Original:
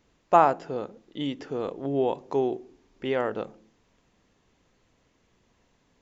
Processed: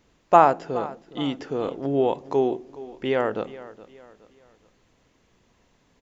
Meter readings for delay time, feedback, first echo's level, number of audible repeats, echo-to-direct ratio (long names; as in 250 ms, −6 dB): 419 ms, 39%, −17.5 dB, 3, −17.0 dB